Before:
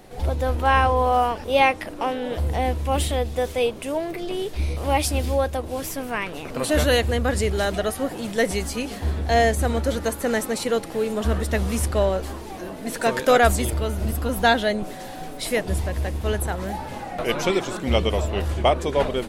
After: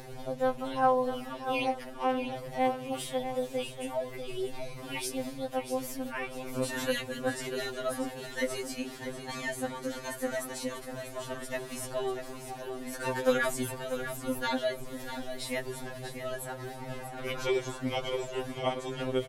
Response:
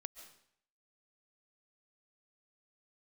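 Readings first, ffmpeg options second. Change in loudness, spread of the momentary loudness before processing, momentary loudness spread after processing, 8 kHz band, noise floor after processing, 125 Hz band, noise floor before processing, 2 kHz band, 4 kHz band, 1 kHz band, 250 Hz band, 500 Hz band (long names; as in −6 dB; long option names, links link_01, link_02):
−10.5 dB, 10 LU, 9 LU, −9.0 dB, −44 dBFS, −18.0 dB, −36 dBFS, −10.5 dB, −10.0 dB, −11.0 dB, −9.0 dB, −9.5 dB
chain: -filter_complex "[0:a]acompressor=mode=upward:threshold=-26dB:ratio=2.5,asplit=2[link_01][link_02];[link_02]aecho=0:1:642|1284|1926|2568:0.335|0.121|0.0434|0.0156[link_03];[link_01][link_03]amix=inputs=2:normalize=0,afftfilt=real='re*2.45*eq(mod(b,6),0)':imag='im*2.45*eq(mod(b,6),0)':win_size=2048:overlap=0.75,volume=-7.5dB"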